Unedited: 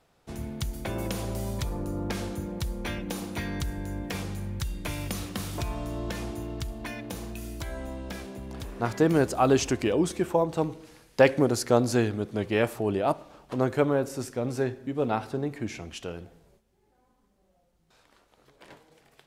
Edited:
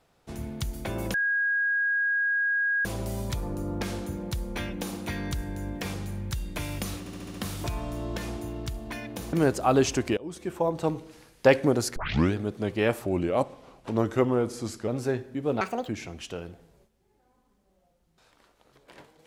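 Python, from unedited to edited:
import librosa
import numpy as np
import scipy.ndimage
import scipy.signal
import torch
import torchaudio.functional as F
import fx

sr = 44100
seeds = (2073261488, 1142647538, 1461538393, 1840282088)

y = fx.edit(x, sr, fx.insert_tone(at_s=1.14, length_s=1.71, hz=1640.0, db=-22.5),
    fx.stutter(start_s=5.28, slice_s=0.07, count=6),
    fx.cut(start_s=7.27, length_s=1.8),
    fx.fade_in_from(start_s=9.91, length_s=0.63, floor_db=-23.0),
    fx.tape_start(start_s=11.7, length_s=0.38),
    fx.speed_span(start_s=12.8, length_s=1.6, speed=0.88),
    fx.speed_span(start_s=15.13, length_s=0.48, speed=1.73), tone=tone)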